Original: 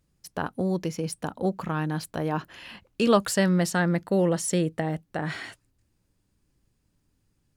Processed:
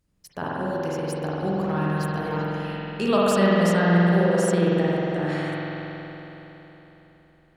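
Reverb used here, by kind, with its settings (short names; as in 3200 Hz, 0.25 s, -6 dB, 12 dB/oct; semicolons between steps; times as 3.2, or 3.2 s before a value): spring tank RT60 3.8 s, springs 46 ms, chirp 35 ms, DRR -7 dB; gain -3.5 dB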